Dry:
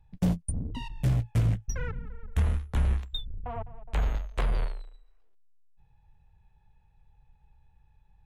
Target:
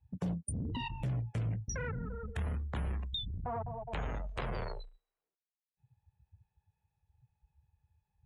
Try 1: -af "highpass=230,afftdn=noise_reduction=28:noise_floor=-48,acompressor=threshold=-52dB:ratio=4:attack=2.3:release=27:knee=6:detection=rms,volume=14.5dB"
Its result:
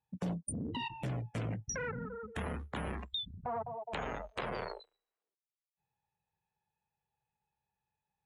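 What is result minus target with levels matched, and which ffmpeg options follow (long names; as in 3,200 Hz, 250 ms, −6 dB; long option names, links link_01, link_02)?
125 Hz band −3.5 dB
-af "highpass=90,afftdn=noise_reduction=28:noise_floor=-48,acompressor=threshold=-52dB:ratio=4:attack=2.3:release=27:knee=6:detection=rms,volume=14.5dB"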